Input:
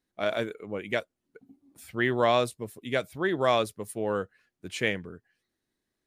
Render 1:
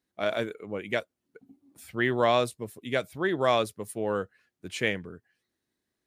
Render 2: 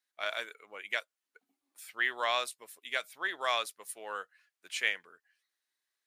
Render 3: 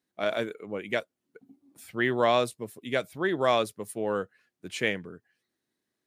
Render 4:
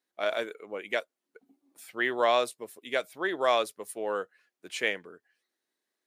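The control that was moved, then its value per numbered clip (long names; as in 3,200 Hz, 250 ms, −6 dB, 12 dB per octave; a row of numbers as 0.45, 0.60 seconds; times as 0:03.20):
high-pass filter, corner frequency: 48, 1,200, 120, 430 Hertz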